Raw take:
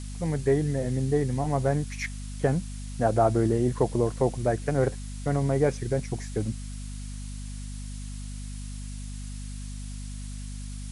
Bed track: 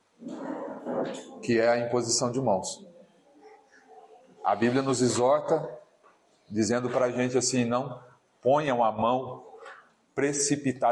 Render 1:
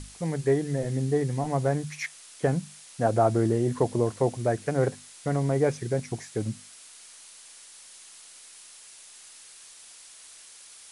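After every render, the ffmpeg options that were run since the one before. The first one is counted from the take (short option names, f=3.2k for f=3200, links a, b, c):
-af "bandreject=f=50:t=h:w=6,bandreject=f=100:t=h:w=6,bandreject=f=150:t=h:w=6,bandreject=f=200:t=h:w=6,bandreject=f=250:t=h:w=6"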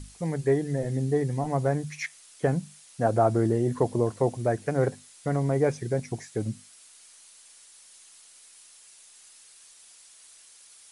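-af "afftdn=nr=6:nf=-49"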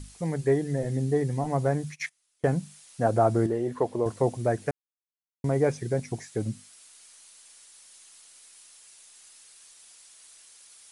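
-filter_complex "[0:a]asplit=3[a][b][c];[a]afade=t=out:st=1.91:d=0.02[d];[b]agate=range=-21dB:threshold=-40dB:ratio=16:release=100:detection=peak,afade=t=in:st=1.91:d=0.02,afade=t=out:st=2.55:d=0.02[e];[c]afade=t=in:st=2.55:d=0.02[f];[d][e][f]amix=inputs=3:normalize=0,asettb=1/sr,asplit=3[g][h][i];[g]atrim=end=3.464[j];[h]atrim=start=3.46:end=4.06,asetpts=PTS-STARTPTS,afade=t=in:d=0.004:c=qsin,afade=t=out:st=0.596:d=0.004:c=qsin,bass=f=250:g=-10,treble=f=4k:g=-8[k];[i]atrim=start=4.056[l];[j][k]acrossfade=d=0.004:c1=hsin:c2=qsin[m];[m][l]acrossfade=d=0.004:c1=qsin:c2=hsin,asplit=3[n][o][p];[n]atrim=end=4.71,asetpts=PTS-STARTPTS,afade=t=out:st=4.706:d=0.004:c=hsin[q];[o]atrim=start=4.71:end=5.44,asetpts=PTS-STARTPTS,volume=0[r];[p]atrim=start=5.44,asetpts=PTS-STARTPTS,afade=t=in:d=0.004:c=hsin[s];[q][r][s]concat=n=3:v=0:a=1"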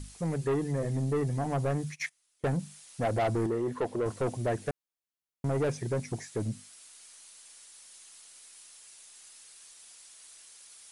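-af "asoftclip=type=tanh:threshold=-24dB"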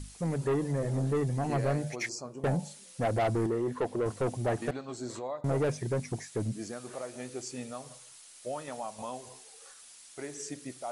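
-filter_complex "[1:a]volume=-14.5dB[a];[0:a][a]amix=inputs=2:normalize=0"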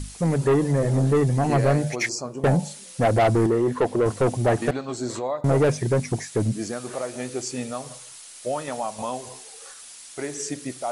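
-af "volume=9.5dB"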